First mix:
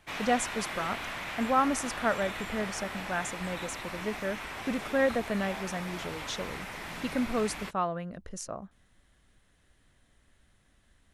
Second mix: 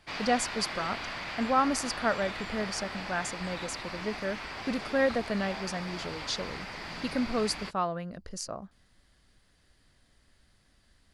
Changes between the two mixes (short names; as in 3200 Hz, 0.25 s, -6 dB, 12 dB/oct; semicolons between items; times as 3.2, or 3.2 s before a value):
background: add air absorption 66 m; master: add bell 4700 Hz +14.5 dB 0.25 oct